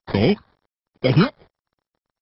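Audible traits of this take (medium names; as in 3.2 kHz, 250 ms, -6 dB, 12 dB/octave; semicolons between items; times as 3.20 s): a quantiser's noise floor 10-bit, dither none; phasing stages 4, 1.2 Hz, lowest notch 210–1200 Hz; aliases and images of a low sample rate 2.7 kHz, jitter 0%; MP2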